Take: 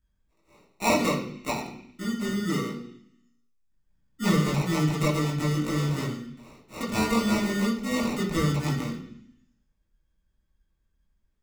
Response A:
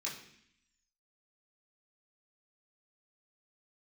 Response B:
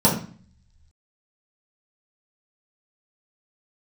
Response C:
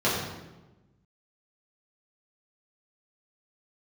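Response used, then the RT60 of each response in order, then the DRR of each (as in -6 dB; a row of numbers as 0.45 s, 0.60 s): A; 0.65 s, 0.45 s, 1.1 s; -6.0 dB, -7.0 dB, -8.5 dB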